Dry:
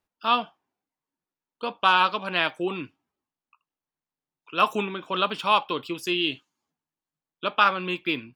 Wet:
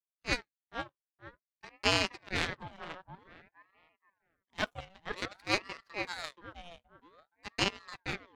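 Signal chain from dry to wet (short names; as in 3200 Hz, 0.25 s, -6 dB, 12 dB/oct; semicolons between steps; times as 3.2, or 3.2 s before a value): harmonic-percussive split percussive -3 dB; power-law curve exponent 2; tape echo 0.473 s, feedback 33%, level -3 dB, low-pass 1200 Hz; ring modulator with a swept carrier 960 Hz, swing 65%, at 0.52 Hz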